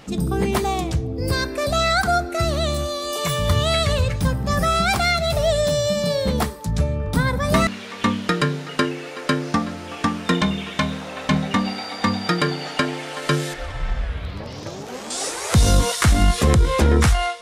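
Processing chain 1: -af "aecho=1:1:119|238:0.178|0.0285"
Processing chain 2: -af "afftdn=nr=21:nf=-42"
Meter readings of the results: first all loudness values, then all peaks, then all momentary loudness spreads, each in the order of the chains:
-21.0, -21.5 LUFS; -4.5, -4.5 dBFS; 10, 10 LU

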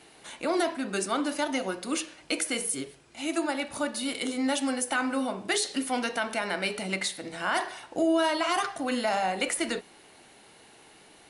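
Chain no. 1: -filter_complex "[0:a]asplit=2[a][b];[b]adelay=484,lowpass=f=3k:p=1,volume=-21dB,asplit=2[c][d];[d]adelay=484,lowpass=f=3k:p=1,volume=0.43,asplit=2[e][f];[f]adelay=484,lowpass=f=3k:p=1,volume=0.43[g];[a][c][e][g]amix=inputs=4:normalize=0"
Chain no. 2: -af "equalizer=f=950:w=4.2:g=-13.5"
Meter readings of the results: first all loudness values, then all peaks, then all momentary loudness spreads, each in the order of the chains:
-29.0, -30.0 LUFS; -14.5, -15.0 dBFS; 6, 5 LU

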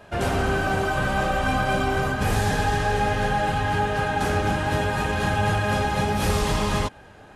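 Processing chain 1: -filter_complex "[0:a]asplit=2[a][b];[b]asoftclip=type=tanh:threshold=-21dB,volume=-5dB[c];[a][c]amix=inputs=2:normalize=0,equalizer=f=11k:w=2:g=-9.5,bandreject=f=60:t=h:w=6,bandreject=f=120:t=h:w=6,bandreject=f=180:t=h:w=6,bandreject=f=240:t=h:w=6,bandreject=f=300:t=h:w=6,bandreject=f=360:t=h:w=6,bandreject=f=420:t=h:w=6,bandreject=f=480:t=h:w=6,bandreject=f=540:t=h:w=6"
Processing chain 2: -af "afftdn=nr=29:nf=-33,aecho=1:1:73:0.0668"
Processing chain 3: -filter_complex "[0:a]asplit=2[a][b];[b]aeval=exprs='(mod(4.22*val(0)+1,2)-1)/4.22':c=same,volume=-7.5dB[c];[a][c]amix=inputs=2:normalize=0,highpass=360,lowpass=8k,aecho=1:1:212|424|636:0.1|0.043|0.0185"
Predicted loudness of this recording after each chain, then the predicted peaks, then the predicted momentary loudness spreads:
-21.0, -24.0, -22.5 LUFS; -9.5, -12.0, -10.0 dBFS; 1, 1, 2 LU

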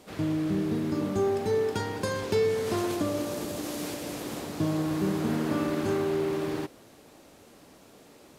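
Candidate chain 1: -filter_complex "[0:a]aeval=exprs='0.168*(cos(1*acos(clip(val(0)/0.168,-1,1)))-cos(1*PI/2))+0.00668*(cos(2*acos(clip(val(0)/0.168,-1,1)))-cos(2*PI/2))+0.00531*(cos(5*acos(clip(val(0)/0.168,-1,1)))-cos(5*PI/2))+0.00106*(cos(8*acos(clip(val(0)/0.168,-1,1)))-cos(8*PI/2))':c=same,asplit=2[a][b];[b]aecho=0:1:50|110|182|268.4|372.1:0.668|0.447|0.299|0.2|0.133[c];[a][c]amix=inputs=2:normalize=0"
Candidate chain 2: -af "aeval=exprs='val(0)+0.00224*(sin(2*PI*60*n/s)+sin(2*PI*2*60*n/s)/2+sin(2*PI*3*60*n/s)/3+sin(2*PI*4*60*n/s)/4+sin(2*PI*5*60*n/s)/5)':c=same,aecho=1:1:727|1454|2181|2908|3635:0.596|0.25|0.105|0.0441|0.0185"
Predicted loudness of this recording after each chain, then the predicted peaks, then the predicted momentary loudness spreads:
-28.0, -28.0 LUFS; -13.0, -14.5 dBFS; 8, 9 LU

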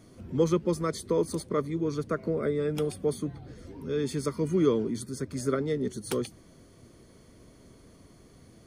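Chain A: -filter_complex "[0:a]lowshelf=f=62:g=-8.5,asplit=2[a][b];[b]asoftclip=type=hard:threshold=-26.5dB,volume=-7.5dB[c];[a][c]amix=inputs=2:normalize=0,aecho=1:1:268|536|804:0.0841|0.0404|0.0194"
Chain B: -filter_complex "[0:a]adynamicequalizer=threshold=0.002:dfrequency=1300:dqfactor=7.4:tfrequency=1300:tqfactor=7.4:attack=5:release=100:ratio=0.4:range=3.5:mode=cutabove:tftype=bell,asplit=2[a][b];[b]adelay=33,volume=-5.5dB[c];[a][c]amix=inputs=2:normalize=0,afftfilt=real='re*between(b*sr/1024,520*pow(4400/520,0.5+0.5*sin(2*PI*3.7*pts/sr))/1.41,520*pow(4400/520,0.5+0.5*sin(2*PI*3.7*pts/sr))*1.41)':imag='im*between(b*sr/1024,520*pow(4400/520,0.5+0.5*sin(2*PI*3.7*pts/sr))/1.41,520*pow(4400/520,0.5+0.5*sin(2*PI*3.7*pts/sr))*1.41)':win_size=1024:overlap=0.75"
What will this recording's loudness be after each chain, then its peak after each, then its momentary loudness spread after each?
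-28.0, -39.5 LUFS; -11.5, -19.0 dBFS; 9, 18 LU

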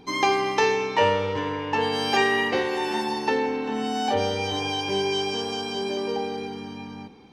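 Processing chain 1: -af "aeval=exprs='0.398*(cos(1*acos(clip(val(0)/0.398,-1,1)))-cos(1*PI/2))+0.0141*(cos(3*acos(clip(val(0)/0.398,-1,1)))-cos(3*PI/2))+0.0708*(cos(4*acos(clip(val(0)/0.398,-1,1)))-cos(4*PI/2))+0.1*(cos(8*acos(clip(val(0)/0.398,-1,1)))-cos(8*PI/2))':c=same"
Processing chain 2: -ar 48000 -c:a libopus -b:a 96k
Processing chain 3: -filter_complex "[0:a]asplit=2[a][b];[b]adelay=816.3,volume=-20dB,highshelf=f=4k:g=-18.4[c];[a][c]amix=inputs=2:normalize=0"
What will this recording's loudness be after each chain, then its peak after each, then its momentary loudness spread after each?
-21.5, -24.5, -24.5 LUFS; -4.0, -8.0, -8.0 dBFS; 9, 10, 10 LU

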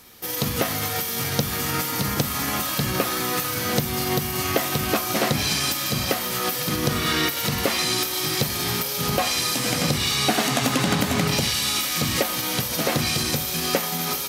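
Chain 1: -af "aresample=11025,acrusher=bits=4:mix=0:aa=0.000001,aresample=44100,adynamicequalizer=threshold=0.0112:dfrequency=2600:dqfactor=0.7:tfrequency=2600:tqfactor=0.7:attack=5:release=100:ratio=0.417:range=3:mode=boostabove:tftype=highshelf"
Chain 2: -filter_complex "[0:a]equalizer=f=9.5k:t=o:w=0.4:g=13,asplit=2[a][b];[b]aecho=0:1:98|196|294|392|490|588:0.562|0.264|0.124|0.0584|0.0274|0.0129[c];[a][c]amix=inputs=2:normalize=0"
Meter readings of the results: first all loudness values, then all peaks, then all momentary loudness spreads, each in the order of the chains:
-20.5, -18.5 LUFS; -3.5, -2.5 dBFS; 4, 3 LU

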